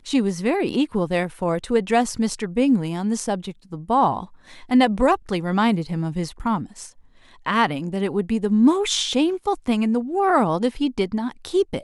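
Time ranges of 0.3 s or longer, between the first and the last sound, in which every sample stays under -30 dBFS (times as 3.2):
4.24–4.71
6.86–7.46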